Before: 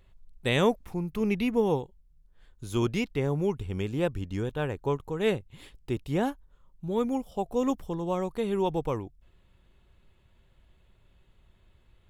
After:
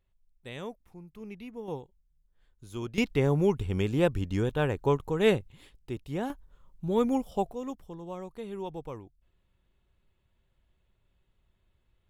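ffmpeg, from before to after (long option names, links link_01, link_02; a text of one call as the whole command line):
ffmpeg -i in.wav -af "asetnsamples=nb_out_samples=441:pad=0,asendcmd='1.68 volume volume -9.5dB;2.98 volume volume 3dB;5.52 volume volume -5.5dB;6.3 volume volume 2dB;7.52 volume volume -10dB',volume=-16dB" out.wav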